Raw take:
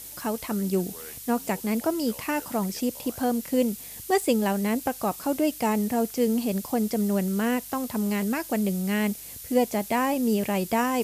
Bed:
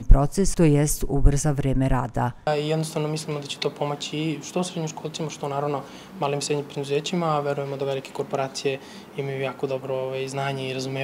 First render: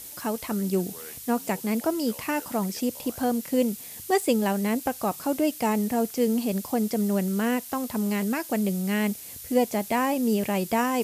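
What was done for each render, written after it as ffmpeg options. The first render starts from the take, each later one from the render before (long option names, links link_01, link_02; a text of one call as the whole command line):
ffmpeg -i in.wav -af "bandreject=frequency=50:width_type=h:width=4,bandreject=frequency=100:width_type=h:width=4,bandreject=frequency=150:width_type=h:width=4" out.wav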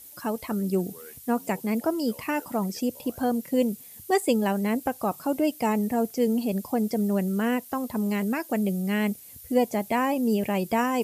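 ffmpeg -i in.wav -af "afftdn=noise_reduction=10:noise_floor=-41" out.wav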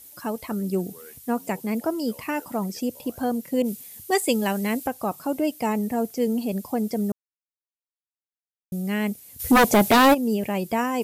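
ffmpeg -i in.wav -filter_complex "[0:a]asettb=1/sr,asplit=3[link_01][link_02][link_03];[link_01]atrim=end=3.624[link_04];[link_02]atrim=start=3.62:end=4.87,asetpts=PTS-STARTPTS,afade=type=in:duration=0.004:curve=qsin,afade=type=out:start_time=1.246:duration=0.004:curve=qsin,adynamicequalizer=threshold=0.00891:dfrequency=1600:dqfactor=0.7:tfrequency=1600:tqfactor=0.7:attack=5:release=100:ratio=0.375:range=3:mode=boostabove:tftype=highshelf[link_05];[link_03]atrim=start=4.866[link_06];[link_04][link_05]acrossfade=duration=0.004:curve1=hsin:curve2=qsin[link_07];[link_07][link_06]acrossfade=duration=0.004:curve1=qsin:curve2=hsin,asplit=3[link_08][link_09][link_10];[link_08]afade=type=out:start_time=9.39:duration=0.02[link_11];[link_09]aeval=exprs='0.282*sin(PI/2*3.55*val(0)/0.282)':channel_layout=same,afade=type=in:start_time=9.39:duration=0.02,afade=type=out:start_time=10.13:duration=0.02[link_12];[link_10]afade=type=in:start_time=10.13:duration=0.02[link_13];[link_11][link_12][link_13]amix=inputs=3:normalize=0,asplit=3[link_14][link_15][link_16];[link_14]atrim=end=7.12,asetpts=PTS-STARTPTS,afade=type=out:start_time=7.116:duration=0.004:curve=hsin[link_17];[link_15]atrim=start=7.12:end=8.72,asetpts=PTS-STARTPTS,volume=0[link_18];[link_16]atrim=start=8.72,asetpts=PTS-STARTPTS,afade=type=in:duration=0.004:curve=hsin[link_19];[link_17][link_18][link_19]concat=n=3:v=0:a=1" out.wav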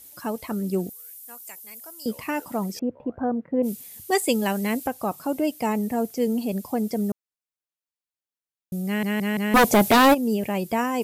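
ffmpeg -i in.wav -filter_complex "[0:a]asettb=1/sr,asplit=3[link_01][link_02][link_03];[link_01]atrim=end=0.894[link_04];[link_02]atrim=start=0.89:end=2.06,asetpts=PTS-STARTPTS,afade=type=in:duration=0.004:curve=qsin,afade=type=out:start_time=1.166:duration=0.004:curve=qsin,aderivative[link_05];[link_03]atrim=start=2.056[link_06];[link_04][link_05]acrossfade=duration=0.004:curve1=hsin:curve2=qsin[link_07];[link_07][link_06]acrossfade=duration=0.004:curve1=qsin:curve2=hsin,asettb=1/sr,asplit=3[link_08][link_09][link_10];[link_08]atrim=end=2.794[link_11];[link_09]atrim=start=2.79:end=3.63,asetpts=PTS-STARTPTS,afade=type=in:duration=0.004:curve=qsin,afade=type=out:start_time=0.836:duration=0.004:curve=qsin,lowpass=frequency=1600:width=0.5412,lowpass=frequency=1600:width=1.3066[link_12];[link_10]atrim=start=3.626[link_13];[link_11][link_12]acrossfade=duration=0.004:curve1=hsin:curve2=qsin[link_14];[link_14][link_13]acrossfade=duration=0.004:curve1=qsin:curve2=hsin,asplit=5[link_15][link_16][link_17][link_18][link_19];[link_15]atrim=end=9.032[link_20];[link_16]atrim=start=8.858:end=9.032[link_21];[link_17]atrim=start=8.858:end=9.032[link_22];[link_18]atrim=start=8.858:end=9.032[link_23];[link_19]atrim=start=9.538[link_24];[link_20][link_21]acrossfade=duration=0.004:curve1=hsin:curve2=hsin[link_25];[link_25][link_22]acrossfade=duration=0.004:curve1=hsin:curve2=hsin[link_26];[link_26][link_23]acrossfade=duration=0.004:curve1=hsin:curve2=hsin[link_27];[link_27][link_24]acrossfade=duration=0.004:curve1=hsin:curve2=hsin" out.wav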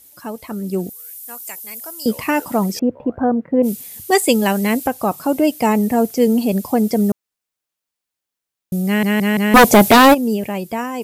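ffmpeg -i in.wav -af "dynaudnorm=framelen=150:gausssize=13:maxgain=10dB" out.wav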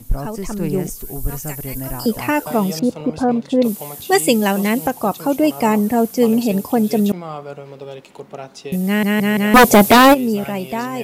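ffmpeg -i in.wav -i bed.wav -filter_complex "[1:a]volume=-6.5dB[link_01];[0:a][link_01]amix=inputs=2:normalize=0" out.wav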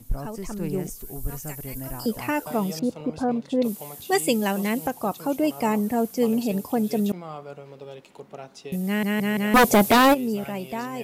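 ffmpeg -i in.wav -af "volume=-7.5dB" out.wav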